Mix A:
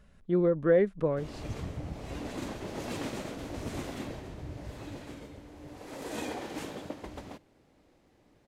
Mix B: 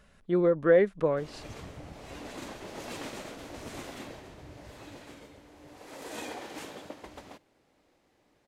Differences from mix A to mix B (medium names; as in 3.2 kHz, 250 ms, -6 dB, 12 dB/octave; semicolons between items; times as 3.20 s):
speech +5.5 dB; master: add bass shelf 340 Hz -9.5 dB